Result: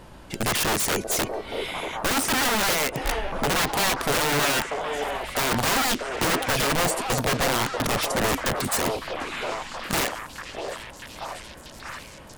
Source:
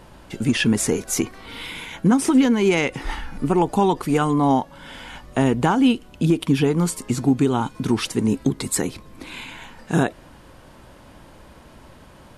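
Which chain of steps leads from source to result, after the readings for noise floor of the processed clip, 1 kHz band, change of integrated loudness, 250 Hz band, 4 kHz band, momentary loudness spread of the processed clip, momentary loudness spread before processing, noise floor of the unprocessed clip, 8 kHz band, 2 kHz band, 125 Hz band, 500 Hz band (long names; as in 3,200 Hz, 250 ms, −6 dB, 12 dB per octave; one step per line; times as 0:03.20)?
−44 dBFS, 0.0 dB, −3.5 dB, −12.0 dB, +5.0 dB, 15 LU, 18 LU, −47 dBFS, +2.5 dB, +4.5 dB, −8.5 dB, −3.0 dB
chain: wrap-around overflow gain 18 dB
echo through a band-pass that steps 639 ms, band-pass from 530 Hz, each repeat 0.7 octaves, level −1 dB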